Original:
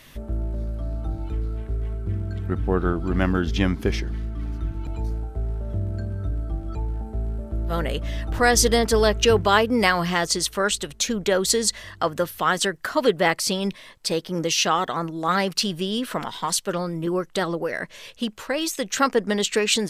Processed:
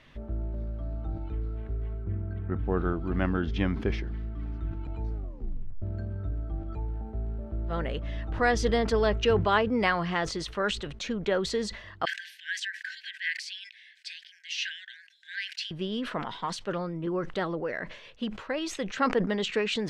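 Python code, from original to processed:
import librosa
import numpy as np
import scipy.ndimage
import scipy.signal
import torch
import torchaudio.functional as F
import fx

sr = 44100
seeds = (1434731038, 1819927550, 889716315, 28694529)

y = fx.lowpass(x, sr, hz=2400.0, slope=12, at=(2.04, 2.59))
y = fx.brickwall_highpass(y, sr, low_hz=1500.0, at=(12.05, 15.71))
y = fx.edit(y, sr, fx.tape_stop(start_s=5.14, length_s=0.68), tone=tone)
y = scipy.signal.sosfilt(scipy.signal.butter(2, 3100.0, 'lowpass', fs=sr, output='sos'), y)
y = fx.sustainer(y, sr, db_per_s=88.0)
y = y * librosa.db_to_amplitude(-6.0)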